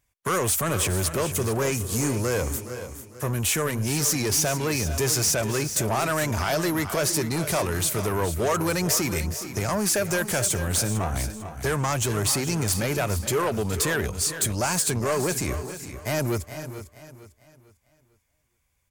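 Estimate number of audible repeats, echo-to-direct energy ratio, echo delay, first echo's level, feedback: 5, -9.5 dB, 0.417 s, -14.0 dB, no steady repeat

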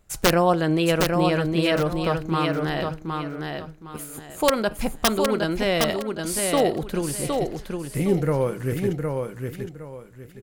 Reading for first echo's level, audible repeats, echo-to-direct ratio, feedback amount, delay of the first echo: -4.5 dB, 3, -4.0 dB, 27%, 0.763 s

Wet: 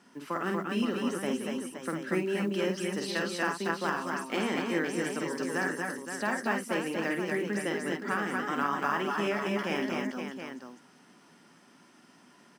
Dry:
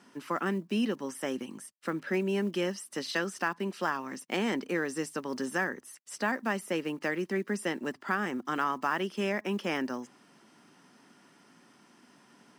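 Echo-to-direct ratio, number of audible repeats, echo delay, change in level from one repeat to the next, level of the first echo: 1.0 dB, 4, 49 ms, no steady repeat, -5.0 dB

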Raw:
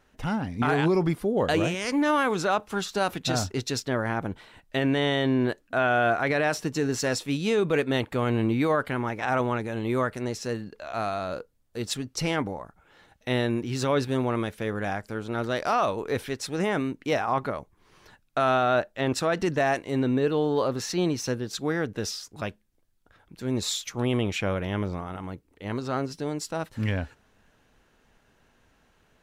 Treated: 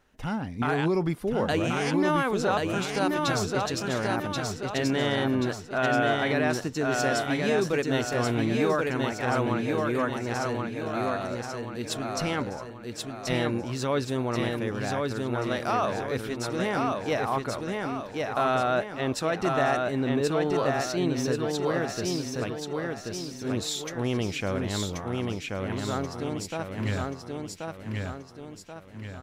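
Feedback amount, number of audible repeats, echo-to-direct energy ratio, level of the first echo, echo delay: 45%, 5, -2.0 dB, -3.0 dB, 1.082 s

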